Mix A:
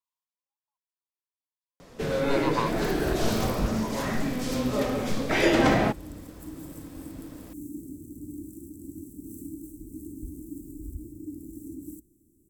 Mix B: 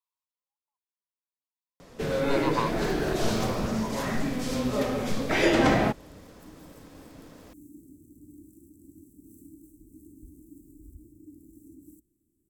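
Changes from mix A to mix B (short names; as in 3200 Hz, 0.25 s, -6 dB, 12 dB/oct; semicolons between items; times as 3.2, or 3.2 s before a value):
first sound: send off; second sound -10.5 dB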